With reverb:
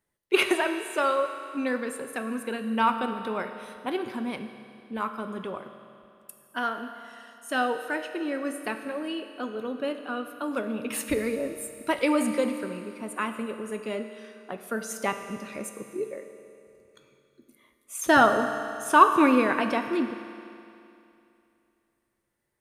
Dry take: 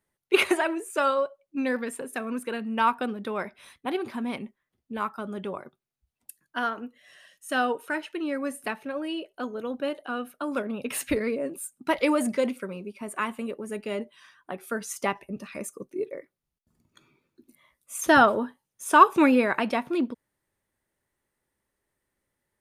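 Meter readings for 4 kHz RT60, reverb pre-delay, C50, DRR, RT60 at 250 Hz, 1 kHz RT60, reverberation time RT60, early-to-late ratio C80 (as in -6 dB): 2.6 s, 7 ms, 8.0 dB, 7.0 dB, 2.7 s, 2.7 s, 2.7 s, 9.0 dB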